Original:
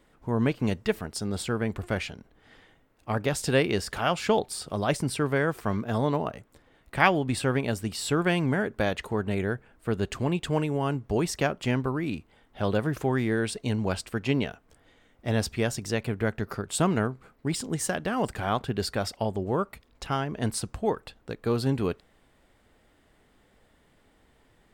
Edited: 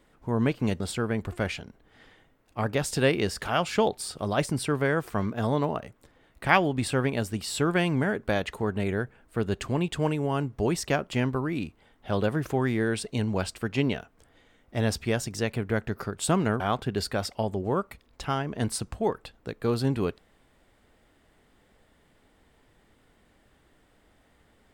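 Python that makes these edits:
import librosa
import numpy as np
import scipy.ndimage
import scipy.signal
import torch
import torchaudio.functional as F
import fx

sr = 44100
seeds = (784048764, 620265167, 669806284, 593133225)

y = fx.edit(x, sr, fx.cut(start_s=0.8, length_s=0.51),
    fx.cut(start_s=17.11, length_s=1.31), tone=tone)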